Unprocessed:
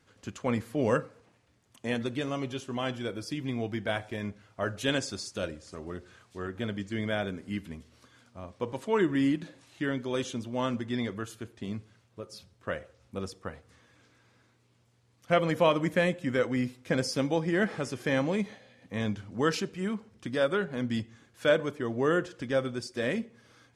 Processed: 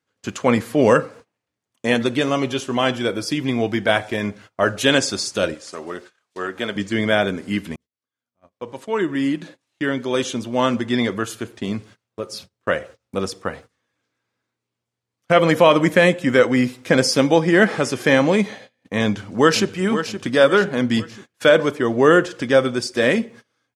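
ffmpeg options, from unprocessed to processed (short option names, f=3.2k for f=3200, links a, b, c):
-filter_complex "[0:a]asettb=1/sr,asplit=3[a][b][c];[a]atrim=end=5.544[d];[b]atrim=start=5.54:end=6.76,asetpts=PTS-STARTPTS,afade=t=in:d=0.004:c=qsin,afade=t=out:st=1.216:d=0.004:c=qsin,highpass=f=480:p=1[e];[c]atrim=start=6.756[f];[d][e]acrossfade=d=0.004:c1=hsin:c2=qsin[g];[g][f]acrossfade=d=0.004:c1=qsin:c2=hsin,asplit=2[h][i];[i]afade=t=in:st=19.03:d=0.01,afade=t=out:st=19.77:d=0.01,aecho=0:1:520|1040|1560|2080|2600:0.298538|0.134342|0.060454|0.0272043|0.0122419[j];[h][j]amix=inputs=2:normalize=0,asplit=2[k][l];[k]atrim=end=7.76,asetpts=PTS-STARTPTS,afade=t=out:st=7.756:d=0.004:c=hsin[m];[l]atrim=start=7.76,asetpts=PTS-STARTPTS,afade=t=in:d=3.32[n];[m][n]concat=n=2:v=0:a=1,agate=range=-26dB:threshold=-52dB:ratio=16:detection=peak,highpass=f=210:p=1,alimiter=level_in=15dB:limit=-1dB:release=50:level=0:latency=1,volume=-1dB"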